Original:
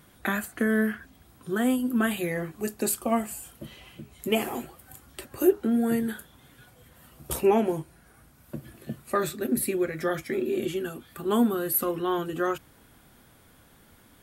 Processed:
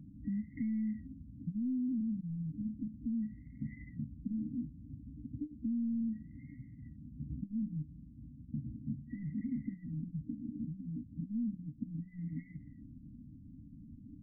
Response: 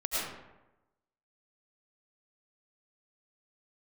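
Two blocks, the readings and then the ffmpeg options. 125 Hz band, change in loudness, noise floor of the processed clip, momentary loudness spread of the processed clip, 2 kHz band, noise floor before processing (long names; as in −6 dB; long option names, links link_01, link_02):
−2.0 dB, −12.5 dB, −54 dBFS, 17 LU, below −25 dB, −57 dBFS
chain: -filter_complex "[0:a]acrossover=split=360[link_01][link_02];[link_02]acompressor=threshold=-33dB:ratio=6[link_03];[link_01][link_03]amix=inputs=2:normalize=0,asoftclip=type=tanh:threshold=-35.5dB,tiltshelf=frequency=970:gain=7,acompressor=threshold=-36dB:ratio=6,lowshelf=frequency=95:gain=-8,afftfilt=real='re*(1-between(b*sr/4096,310,1900))':imag='im*(1-between(b*sr/4096,310,1900))':win_size=4096:overlap=0.75,afftfilt=real='re*lt(b*sr/1024,980*pow(2200/980,0.5+0.5*sin(2*PI*0.34*pts/sr)))':imag='im*lt(b*sr/1024,980*pow(2200/980,0.5+0.5*sin(2*PI*0.34*pts/sr)))':win_size=1024:overlap=0.75,volume=4dB"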